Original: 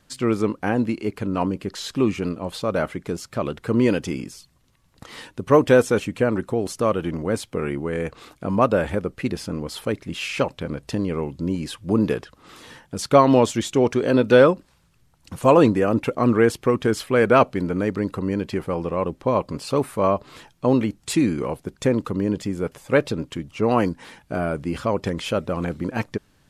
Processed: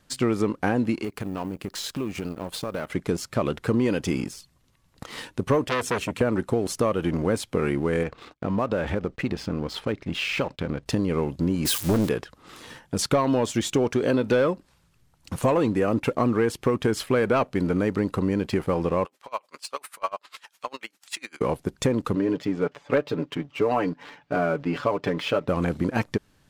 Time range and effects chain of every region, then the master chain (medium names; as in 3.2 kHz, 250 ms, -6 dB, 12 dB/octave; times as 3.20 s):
1.04–2.90 s: companding laws mixed up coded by A + treble shelf 10 kHz +7.5 dB + compression 4:1, threshold -31 dBFS
5.68–6.21 s: high-pass 55 Hz 24 dB/octave + peaking EQ 640 Hz -8 dB 0.44 oct + transformer saturation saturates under 2.9 kHz
8.03–10.86 s: gate -48 dBFS, range -22 dB + low-pass 4.6 kHz + compression 2.5:1, threshold -27 dBFS
11.65–12.09 s: zero-crossing glitches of -23.5 dBFS + waveshaping leveller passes 1 + loudspeaker Doppler distortion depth 0.62 ms
19.05–21.41 s: high-pass 1.2 kHz + upward compressor, threshold -31 dBFS + logarithmic tremolo 10 Hz, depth 25 dB
22.15–25.48 s: high-pass 320 Hz 6 dB/octave + distance through air 180 m + comb 6.9 ms, depth 63%
whole clip: waveshaping leveller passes 1; compression, threshold -19 dBFS